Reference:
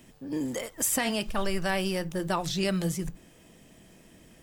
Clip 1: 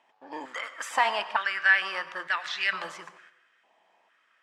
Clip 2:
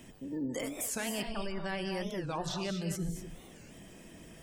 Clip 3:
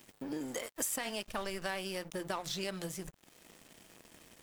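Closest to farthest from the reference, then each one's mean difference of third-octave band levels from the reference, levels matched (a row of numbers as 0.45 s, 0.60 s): 3, 2, 1; 5.0 dB, 7.5 dB, 13.5 dB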